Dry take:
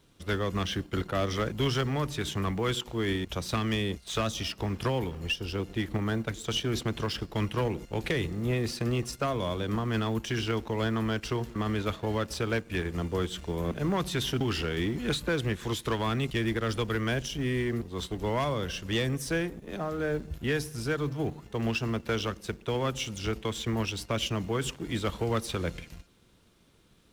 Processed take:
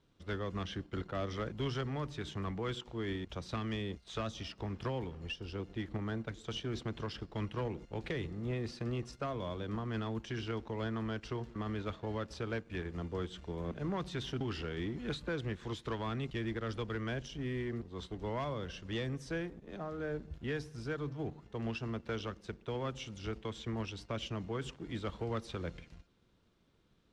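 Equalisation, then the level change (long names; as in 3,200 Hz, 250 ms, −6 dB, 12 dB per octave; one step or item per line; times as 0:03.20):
high-frequency loss of the air 100 metres
parametric band 2,500 Hz −2 dB
−8.0 dB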